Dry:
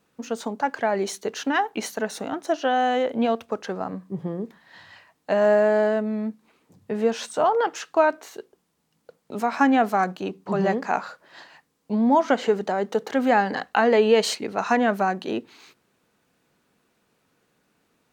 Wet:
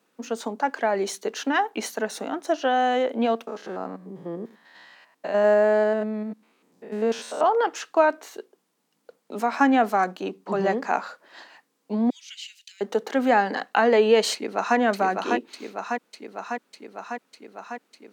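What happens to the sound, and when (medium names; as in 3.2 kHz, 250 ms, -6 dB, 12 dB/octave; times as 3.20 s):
3.47–7.41 s: spectrogram pixelated in time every 100 ms
12.10–12.81 s: elliptic high-pass 2.6 kHz, stop band 70 dB
14.33–14.77 s: echo throw 600 ms, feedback 75%, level -4 dB
whole clip: high-pass 210 Hz 24 dB/octave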